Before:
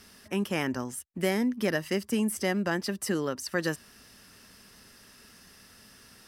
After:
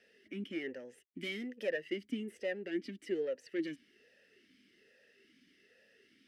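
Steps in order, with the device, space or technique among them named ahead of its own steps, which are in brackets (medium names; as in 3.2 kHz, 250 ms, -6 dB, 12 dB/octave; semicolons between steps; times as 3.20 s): talk box (valve stage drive 23 dB, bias 0.5; talking filter e-i 1.2 Hz); 1.03–1.69 s: treble shelf 3.2 kHz +10.5 dB; trim +4.5 dB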